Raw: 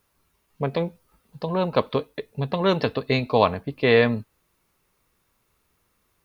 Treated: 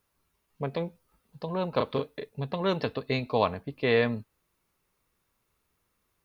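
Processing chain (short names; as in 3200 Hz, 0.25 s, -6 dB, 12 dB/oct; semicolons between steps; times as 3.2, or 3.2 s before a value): 1.72–2.29 doubler 36 ms -4 dB; gain -6.5 dB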